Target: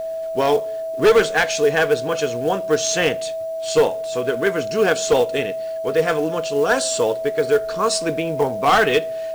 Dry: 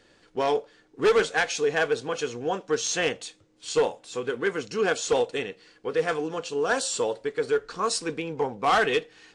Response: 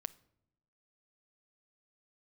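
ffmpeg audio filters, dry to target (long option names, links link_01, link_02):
-filter_complex "[0:a]aeval=exprs='val(0)+0.0316*sin(2*PI*650*n/s)':channel_layout=same,acrusher=bits=6:mode=log:mix=0:aa=0.000001,asplit=2[link_01][link_02];[1:a]atrim=start_sample=2205,lowshelf=frequency=210:gain=8.5[link_03];[link_02][link_03]afir=irnorm=-1:irlink=0,volume=2.5dB[link_04];[link_01][link_04]amix=inputs=2:normalize=0"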